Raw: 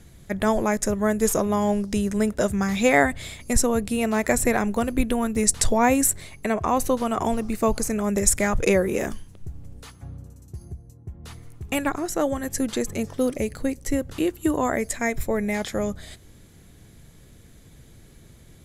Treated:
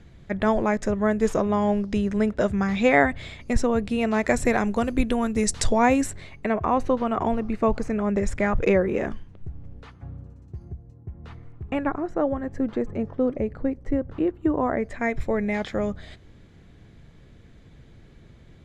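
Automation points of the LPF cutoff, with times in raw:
3.74 s 3400 Hz
4.63 s 6000 Hz
5.69 s 6000 Hz
6.57 s 2400 Hz
11.14 s 2400 Hz
12.08 s 1300 Hz
14.66 s 1300 Hz
15.21 s 3300 Hz

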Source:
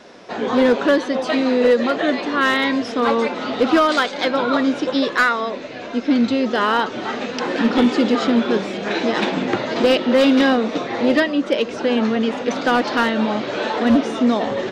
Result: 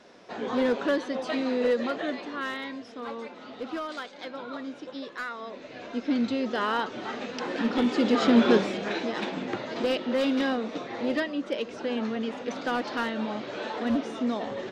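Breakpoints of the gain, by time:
1.85 s -10 dB
2.83 s -19 dB
5.24 s -19 dB
5.77 s -9.5 dB
7.84 s -9.5 dB
8.49 s -0.5 dB
9.1 s -11.5 dB

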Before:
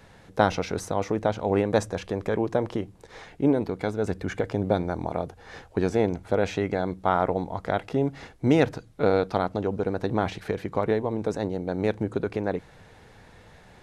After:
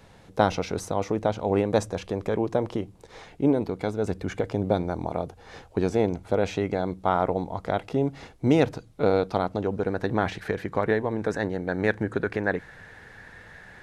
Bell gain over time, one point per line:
bell 1700 Hz 0.54 oct
9.4 s -4 dB
9.95 s +6.5 dB
10.73 s +6.5 dB
11.27 s +13.5 dB

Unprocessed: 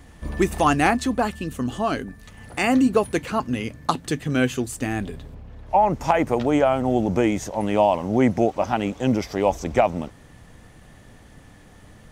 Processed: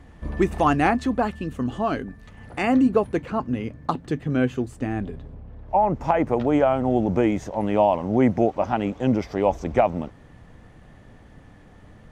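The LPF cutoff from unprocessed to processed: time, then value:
LPF 6 dB/oct
2.55 s 1900 Hz
3.24 s 1000 Hz
5.76 s 1000 Hz
6.61 s 1900 Hz

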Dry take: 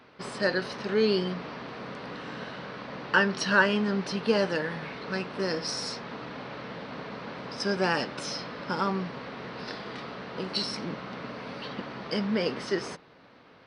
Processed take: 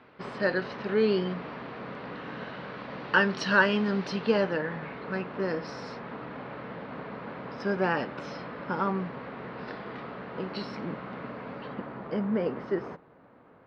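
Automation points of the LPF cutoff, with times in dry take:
2.29 s 2800 Hz
3.49 s 4600 Hz
4.15 s 4600 Hz
4.56 s 2100 Hz
11.24 s 2100 Hz
12.16 s 1300 Hz

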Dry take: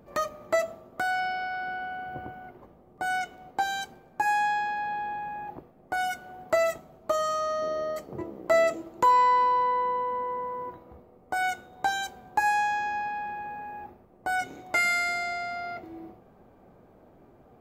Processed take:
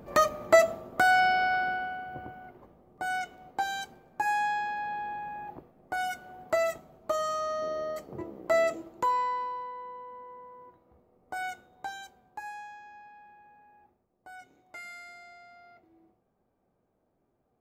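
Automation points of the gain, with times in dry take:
1.54 s +6 dB
2.06 s -3 dB
8.79 s -3 dB
9.73 s -15 dB
10.74 s -15 dB
11.37 s -7 dB
12.81 s -19.5 dB

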